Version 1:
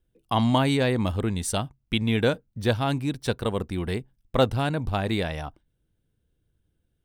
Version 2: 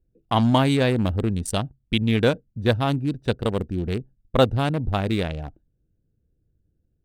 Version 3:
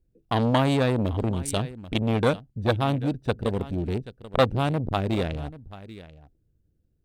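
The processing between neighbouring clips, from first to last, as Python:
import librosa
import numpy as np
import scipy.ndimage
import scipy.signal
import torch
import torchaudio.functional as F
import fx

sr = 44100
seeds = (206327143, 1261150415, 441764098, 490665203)

y1 = fx.wiener(x, sr, points=41)
y1 = F.gain(torch.from_numpy(y1), 3.5).numpy()
y2 = y1 + 10.0 ** (-18.5 / 20.0) * np.pad(y1, (int(786 * sr / 1000.0), 0))[:len(y1)]
y2 = fx.transformer_sat(y2, sr, knee_hz=930.0)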